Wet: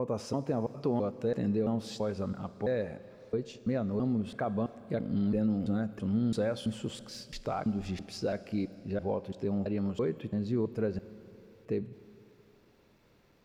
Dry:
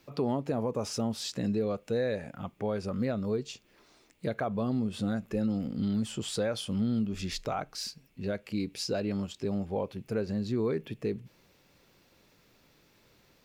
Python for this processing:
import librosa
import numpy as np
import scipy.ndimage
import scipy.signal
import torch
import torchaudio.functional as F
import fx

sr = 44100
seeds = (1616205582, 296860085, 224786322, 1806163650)

y = fx.block_reorder(x, sr, ms=333.0, group=3)
y = fx.high_shelf(y, sr, hz=2500.0, db=-10.0)
y = fx.rev_schroeder(y, sr, rt60_s=3.0, comb_ms=33, drr_db=15.0)